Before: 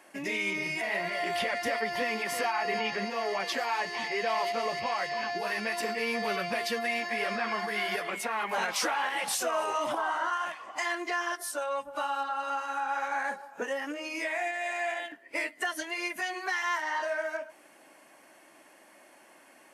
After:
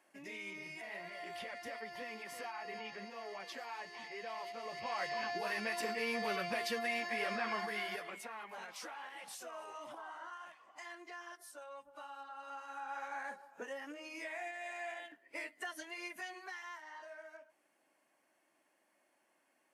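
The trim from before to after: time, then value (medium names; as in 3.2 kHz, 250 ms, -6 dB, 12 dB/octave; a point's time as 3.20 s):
4.60 s -15 dB
5.03 s -6 dB
7.60 s -6 dB
8.57 s -18 dB
12.16 s -18 dB
12.97 s -11.5 dB
16.22 s -11.5 dB
16.80 s -19.5 dB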